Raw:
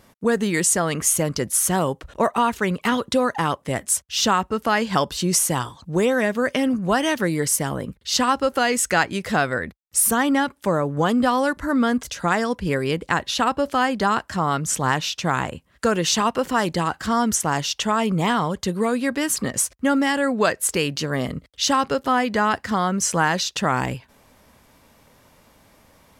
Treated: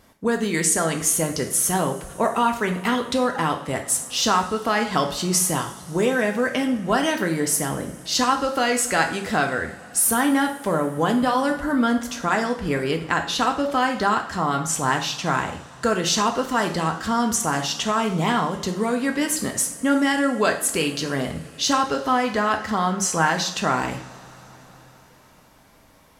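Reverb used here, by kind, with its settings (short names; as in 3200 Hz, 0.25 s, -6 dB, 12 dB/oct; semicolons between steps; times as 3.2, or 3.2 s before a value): two-slope reverb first 0.49 s, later 4.9 s, from -22 dB, DRR 3.5 dB; gain -2 dB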